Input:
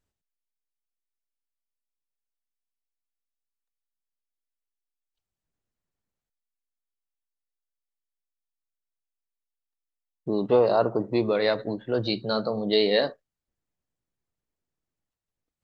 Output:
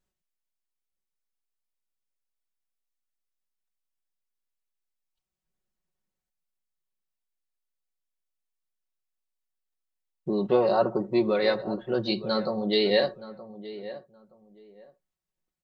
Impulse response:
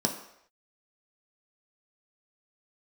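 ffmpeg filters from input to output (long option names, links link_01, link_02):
-filter_complex "[0:a]aecho=1:1:5.4:0.69,asplit=2[link_01][link_02];[link_02]adelay=922,lowpass=frequency=1600:poles=1,volume=-14.5dB,asplit=2[link_03][link_04];[link_04]adelay=922,lowpass=frequency=1600:poles=1,volume=0.21[link_05];[link_01][link_03][link_05]amix=inputs=3:normalize=0,volume=-2.5dB"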